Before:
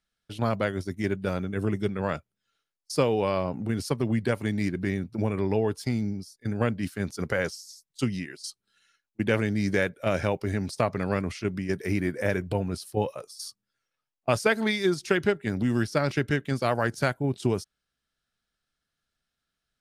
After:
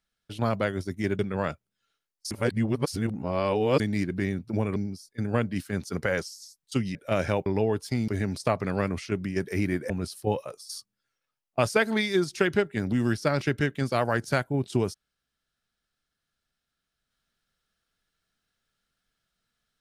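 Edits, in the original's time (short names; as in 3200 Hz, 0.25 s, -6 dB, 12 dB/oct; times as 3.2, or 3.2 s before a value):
1.19–1.84 cut
2.96–4.45 reverse
5.41–6.03 move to 10.41
8.22–9.9 cut
12.23–12.6 cut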